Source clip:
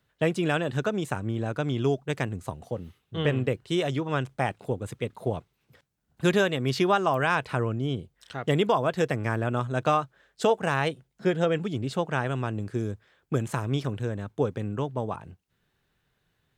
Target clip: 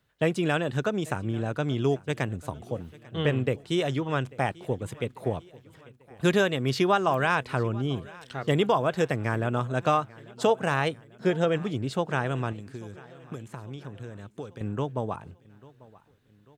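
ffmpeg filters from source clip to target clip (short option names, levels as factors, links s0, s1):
-filter_complex "[0:a]asettb=1/sr,asplit=3[s0][s1][s2];[s0]atrim=end=12.524[s3];[s1]atrim=start=12.52:end=14.61,asetpts=PTS-STARTPTS,afade=t=in:d=0.004:c=qsin,afade=t=out:st=2.086:d=0.004:c=qsin,acrossover=split=1300|2800[s4][s5][s6];[s4]acompressor=threshold=0.0126:ratio=4[s7];[s5]acompressor=threshold=0.00141:ratio=4[s8];[s6]acompressor=threshold=0.00112:ratio=4[s9];[s7][s8][s9]amix=inputs=3:normalize=0[s10];[s2]atrim=start=14.606[s11];[s3][s10]acrossfade=d=0.004:c1=hsin:c2=qsin[s12];[s12][s11]acrossfade=d=0.004:c1=qsin:c2=hsin,aecho=1:1:843|1686|2529|3372:0.0794|0.0421|0.0223|0.0118"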